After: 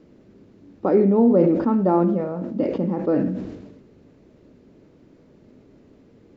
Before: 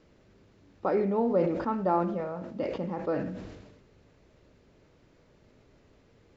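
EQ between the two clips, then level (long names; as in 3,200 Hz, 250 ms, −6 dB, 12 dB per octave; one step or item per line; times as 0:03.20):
parametric band 260 Hz +14 dB 2 octaves
0.0 dB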